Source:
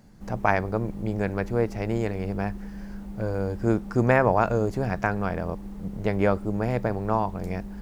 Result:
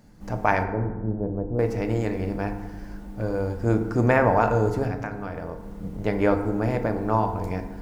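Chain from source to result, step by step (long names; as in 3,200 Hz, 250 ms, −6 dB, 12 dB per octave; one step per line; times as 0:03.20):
0:00.63–0:01.59: Bessel low-pass filter 500 Hz, order 4
0:04.87–0:05.80: downward compressor 3 to 1, threshold −31 dBFS, peak gain reduction 9.5 dB
feedback delay network reverb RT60 1.2 s, low-frequency decay 1.25×, high-frequency decay 0.45×, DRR 5.5 dB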